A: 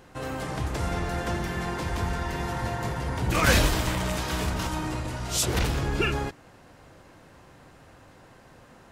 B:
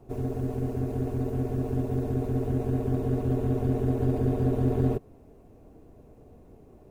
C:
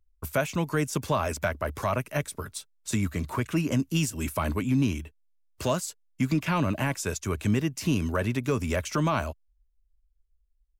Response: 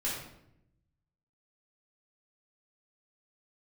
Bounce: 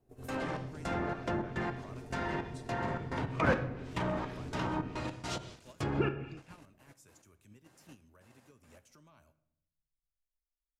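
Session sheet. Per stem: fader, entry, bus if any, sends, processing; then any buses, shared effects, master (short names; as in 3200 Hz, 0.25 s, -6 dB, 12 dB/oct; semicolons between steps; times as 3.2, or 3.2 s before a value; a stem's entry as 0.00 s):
-5.0 dB, 0.00 s, send -10 dB, HPF 120 Hz 12 dB/oct; step gate "..xx..xx.x.x." 106 bpm -24 dB
-10.0 dB, 0.00 s, no send, compressor 2:1, threshold -41 dBFS, peak gain reduction 12 dB
-16.0 dB, 0.00 s, send -16 dB, compressor 2:1, threshold -42 dBFS, peak gain reduction 12 dB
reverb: on, RT60 0.80 s, pre-delay 3 ms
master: gate -47 dBFS, range -11 dB; treble ducked by the level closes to 1200 Hz, closed at -28.5 dBFS; high shelf 6000 Hz +11 dB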